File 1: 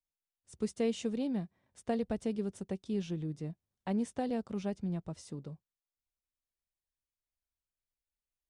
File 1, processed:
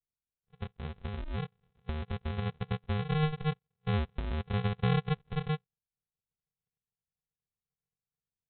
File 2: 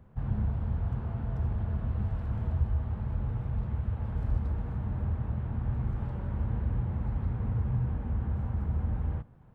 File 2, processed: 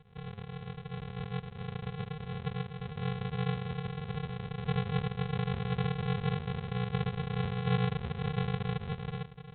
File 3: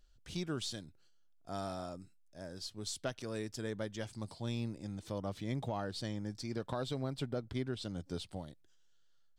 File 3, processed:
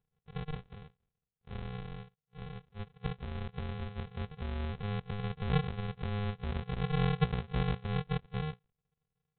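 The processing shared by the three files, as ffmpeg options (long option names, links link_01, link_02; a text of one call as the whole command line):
ffmpeg -i in.wav -af "acompressor=threshold=-35dB:ratio=5,afftfilt=real='re*between(b*sr/4096,120,2800)':imag='im*between(b*sr/4096,120,2800)':win_size=4096:overlap=0.75,asubboost=boost=10.5:cutoff=160,aresample=8000,acrusher=samples=26:mix=1:aa=0.000001,aresample=44100" out.wav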